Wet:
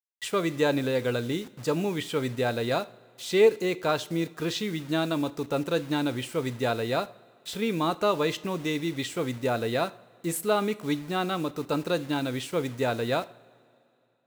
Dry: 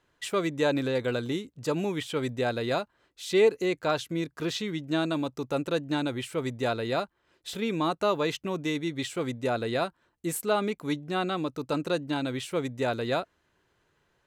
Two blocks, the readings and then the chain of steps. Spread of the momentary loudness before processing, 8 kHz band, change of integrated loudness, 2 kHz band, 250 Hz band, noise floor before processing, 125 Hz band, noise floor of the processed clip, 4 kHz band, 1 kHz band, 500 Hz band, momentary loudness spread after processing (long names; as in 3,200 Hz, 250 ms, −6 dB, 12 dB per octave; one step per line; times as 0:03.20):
6 LU, +2.0 dB, +1.5 dB, +1.0 dB, +1.0 dB, −72 dBFS, +2.0 dB, −62 dBFS, +1.5 dB, +1.0 dB, +1.5 dB, 6 LU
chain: bit reduction 8 bits
coupled-rooms reverb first 0.41 s, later 2.6 s, from −18 dB, DRR 14 dB
level +1 dB